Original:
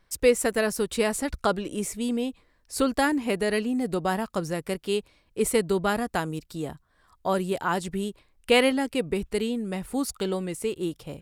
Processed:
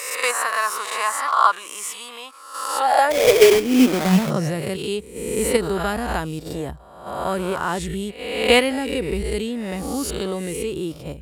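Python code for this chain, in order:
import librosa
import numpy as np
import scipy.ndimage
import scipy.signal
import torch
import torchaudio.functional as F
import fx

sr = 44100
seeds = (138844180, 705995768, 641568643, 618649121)

p1 = fx.spec_swells(x, sr, rise_s=0.9)
p2 = fx.level_steps(p1, sr, step_db=18)
p3 = p1 + (p2 * librosa.db_to_amplitude(2.0))
p4 = fx.filter_sweep_highpass(p3, sr, from_hz=1100.0, to_hz=61.0, start_s=2.6, end_s=5.09, q=7.8)
p5 = fx.sample_hold(p4, sr, seeds[0], rate_hz=2800.0, jitter_pct=20, at=(3.1, 4.29), fade=0.02)
y = p5 * librosa.db_to_amplitude(-2.5)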